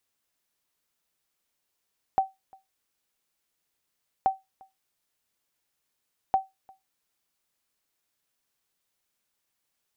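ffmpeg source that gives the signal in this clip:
-f lavfi -i "aevalsrc='0.2*(sin(2*PI*769*mod(t,2.08))*exp(-6.91*mod(t,2.08)/0.19)+0.0376*sin(2*PI*769*max(mod(t,2.08)-0.35,0))*exp(-6.91*max(mod(t,2.08)-0.35,0)/0.19))':d=6.24:s=44100"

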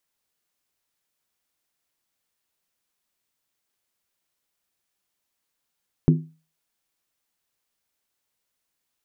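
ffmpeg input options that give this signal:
-f lavfi -i "aevalsrc='0.316*pow(10,-3*t/0.34)*sin(2*PI*159*t)+0.168*pow(10,-3*t/0.269)*sin(2*PI*253.4*t)+0.0891*pow(10,-3*t/0.233)*sin(2*PI*339.6*t)+0.0473*pow(10,-3*t/0.224)*sin(2*PI*365.1*t)+0.0251*pow(10,-3*t/0.209)*sin(2*PI*421.8*t)':d=0.63:s=44100"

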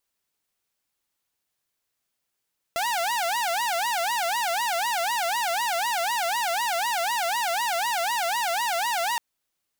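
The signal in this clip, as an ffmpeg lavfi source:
-f lavfi -i "aevalsrc='0.0891*(2*mod((820*t-151/(2*PI*4)*sin(2*PI*4*t)),1)-1)':d=6.42:s=44100"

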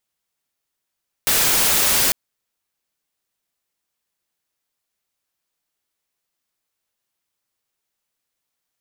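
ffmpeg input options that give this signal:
-f lavfi -i "anoisesrc=c=white:a=0.245:d=0.85:r=44100:seed=1"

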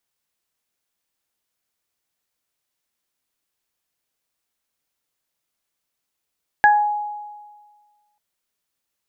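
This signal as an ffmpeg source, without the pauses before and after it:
-f lavfi -i "aevalsrc='0.335*pow(10,-3*t/1.56)*sin(2*PI*834*t)+0.355*pow(10,-3*t/0.28)*sin(2*PI*1668*t)':d=1.54:s=44100"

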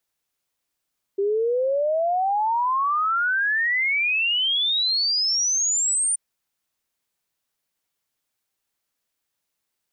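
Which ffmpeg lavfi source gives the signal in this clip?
-f lavfi -i "aevalsrc='0.112*clip(min(t,4.98-t)/0.01,0,1)*sin(2*PI*390*4.98/log(9200/390)*(exp(log(9200/390)*t/4.98)-1))':d=4.98:s=44100"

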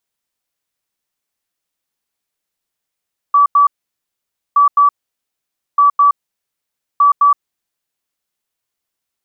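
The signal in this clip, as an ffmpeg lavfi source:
-f lavfi -i "aevalsrc='0.501*sin(2*PI*1150*t)*clip(min(mod(mod(t,1.22),0.21),0.12-mod(mod(t,1.22),0.21))/0.005,0,1)*lt(mod(t,1.22),0.42)':d=4.88:s=44100"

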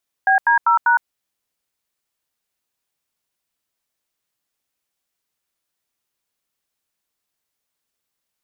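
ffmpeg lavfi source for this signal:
-f lavfi -i "aevalsrc='0.2*clip(min(mod(t,0.197),0.111-mod(t,0.197))/0.002,0,1)*(eq(floor(t/0.197),0)*(sin(2*PI*770*mod(t,0.197))+sin(2*PI*1633*mod(t,0.197)))+eq(floor(t/0.197),1)*(sin(2*PI*941*mod(t,0.197))+sin(2*PI*1633*mod(t,0.197)))+eq(floor(t/0.197),2)*(sin(2*PI*941*mod(t,0.197))+sin(2*PI*1336*mod(t,0.197)))+eq(floor(t/0.197),3)*(sin(2*PI*941*mod(t,0.197))+sin(2*PI*1477*mod(t,0.197))))':d=0.788:s=44100"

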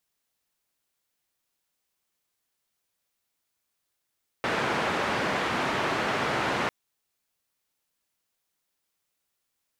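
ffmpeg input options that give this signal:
-f lavfi -i "anoisesrc=c=white:d=2.25:r=44100:seed=1,highpass=f=120,lowpass=f=1600,volume=-11.4dB"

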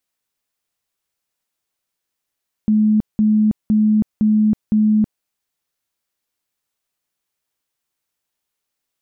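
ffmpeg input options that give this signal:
-f lavfi -i "aevalsrc='0.282*sin(2*PI*214*mod(t,0.51))*lt(mod(t,0.51),69/214)':d=2.55:s=44100"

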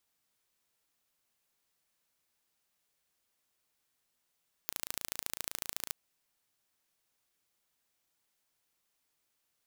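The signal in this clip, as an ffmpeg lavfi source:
-f lavfi -i "aevalsrc='0.447*eq(mod(n,1581),0)*(0.5+0.5*eq(mod(n,3162),0))':d=1.24:s=44100"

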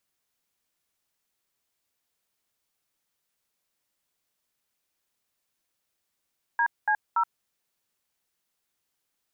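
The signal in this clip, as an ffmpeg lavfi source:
-f lavfi -i "aevalsrc='0.0708*clip(min(mod(t,0.286),0.074-mod(t,0.286))/0.002,0,1)*(eq(floor(t/0.286),0)*(sin(2*PI*941*mod(t,0.286))+sin(2*PI*1633*mod(t,0.286)))+eq(floor(t/0.286),1)*(sin(2*PI*852*mod(t,0.286))+sin(2*PI*1633*mod(t,0.286)))+eq(floor(t/0.286),2)*(sin(2*PI*941*mod(t,0.286))+sin(2*PI*1336*mod(t,0.286))))':d=0.858:s=44100"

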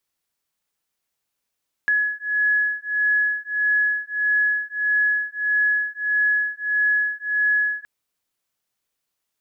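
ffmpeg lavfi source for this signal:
-f lavfi -i "aevalsrc='0.0841*(sin(2*PI*1690*t)+sin(2*PI*1691.6*t))':d=5.97:s=44100"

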